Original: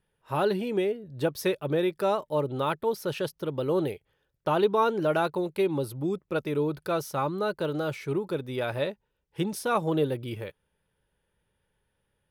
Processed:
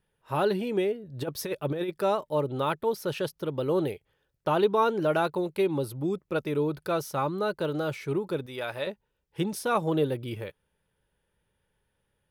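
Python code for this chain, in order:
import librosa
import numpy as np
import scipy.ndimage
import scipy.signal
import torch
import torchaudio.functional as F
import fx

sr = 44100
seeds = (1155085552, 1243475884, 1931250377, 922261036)

y = fx.over_compress(x, sr, threshold_db=-27.0, ratio=-0.5, at=(1.12, 1.89), fade=0.02)
y = fx.low_shelf(y, sr, hz=460.0, db=-10.5, at=(8.46, 8.87))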